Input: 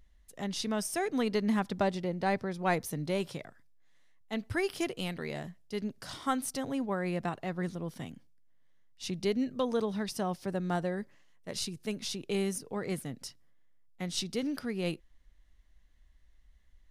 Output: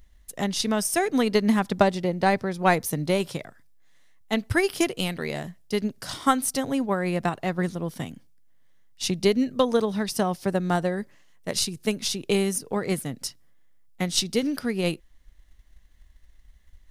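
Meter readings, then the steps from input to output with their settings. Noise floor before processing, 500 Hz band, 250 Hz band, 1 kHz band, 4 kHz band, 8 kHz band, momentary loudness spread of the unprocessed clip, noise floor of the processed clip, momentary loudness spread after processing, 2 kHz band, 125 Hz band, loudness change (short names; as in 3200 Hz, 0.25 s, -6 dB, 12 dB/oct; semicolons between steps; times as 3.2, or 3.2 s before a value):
-62 dBFS, +8.5 dB, +8.0 dB, +9.0 dB, +9.5 dB, +10.5 dB, 10 LU, -55 dBFS, 10 LU, +9.0 dB, +7.5 dB, +8.5 dB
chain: transient shaper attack +5 dB, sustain -1 dB; high shelf 7600 Hz +6.5 dB; gain +6.5 dB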